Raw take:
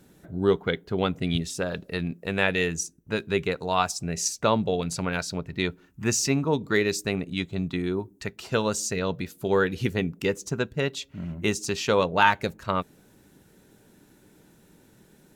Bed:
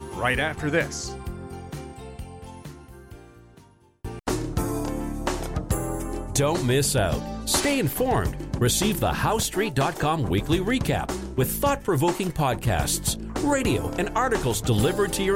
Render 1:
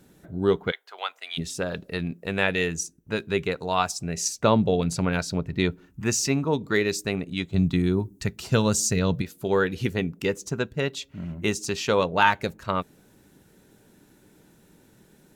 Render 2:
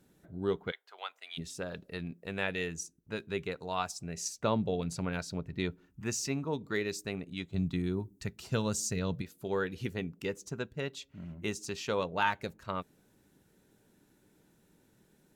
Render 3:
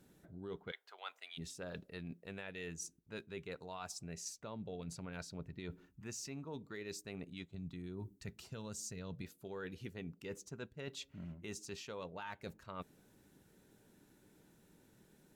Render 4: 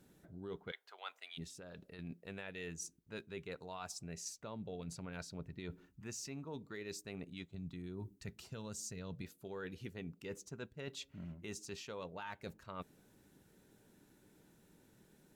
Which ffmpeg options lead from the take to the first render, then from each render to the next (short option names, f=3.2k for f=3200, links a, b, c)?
-filter_complex "[0:a]asplit=3[a][b][c];[a]afade=t=out:st=0.7:d=0.02[d];[b]highpass=f=790:w=0.5412,highpass=f=790:w=1.3066,afade=t=in:st=0.7:d=0.02,afade=t=out:st=1.37:d=0.02[e];[c]afade=t=in:st=1.37:d=0.02[f];[d][e][f]amix=inputs=3:normalize=0,asettb=1/sr,asplit=3[g][h][i];[g]atrim=end=4.444[j];[h]atrim=start=4.44:end=6.01,asetpts=PTS-STARTPTS,afade=t=in:d=0.004:c=qsin,afade=t=out:st=1.566:d=0.004:c=qsin,lowshelf=f=450:g=6[k];[i]atrim=start=6.006[l];[j][k]acrossfade=d=0.004:c1=hsin:c2=qsin[m];[m][l]acrossfade=d=0.004:c1=qsin:c2=hsin,asettb=1/sr,asplit=3[n][o][p];[n]atrim=end=7.544[q];[o]atrim=start=7.54:end=9.22,asetpts=PTS-STARTPTS,afade=t=in:d=0.004:c=qsin,afade=t=out:st=1.676:d=0.004:c=qsin,bass=f=250:g=10,treble=f=4k:g=6[r];[p]atrim=start=9.216[s];[q][r]acrossfade=d=0.004:c1=hsin:c2=qsin[t];[t][s]acrossfade=d=0.004:c1=qsin:c2=hsin"
-af "volume=-10dB"
-af "alimiter=level_in=1dB:limit=-24dB:level=0:latency=1:release=142,volume=-1dB,areverse,acompressor=threshold=-43dB:ratio=6,areverse"
-filter_complex "[0:a]asettb=1/sr,asplit=3[a][b][c];[a]atrim=end=1.444[d];[b]atrim=start=1.44:end=1.99,asetpts=PTS-STARTPTS,afade=t=in:d=0.004:c=qsin,afade=t=out:st=0.546:d=0.004:c=qsin,acompressor=threshold=-49dB:ratio=4:attack=3.2:release=140:knee=1:detection=peak[e];[c]atrim=start=1.986[f];[d][e]acrossfade=d=0.004:c1=hsin:c2=qsin[g];[g][f]acrossfade=d=0.004:c1=qsin:c2=hsin"